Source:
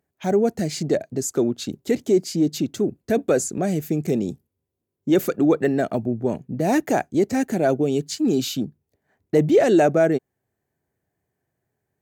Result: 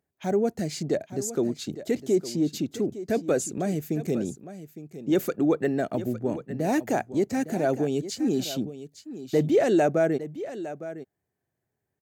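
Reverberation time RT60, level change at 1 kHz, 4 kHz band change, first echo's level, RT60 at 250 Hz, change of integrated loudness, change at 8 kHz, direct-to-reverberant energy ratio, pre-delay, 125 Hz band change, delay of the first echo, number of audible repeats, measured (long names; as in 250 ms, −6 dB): no reverb audible, −5.0 dB, −5.0 dB, −13.5 dB, no reverb audible, −5.0 dB, −5.0 dB, no reverb audible, no reverb audible, −5.0 dB, 859 ms, 1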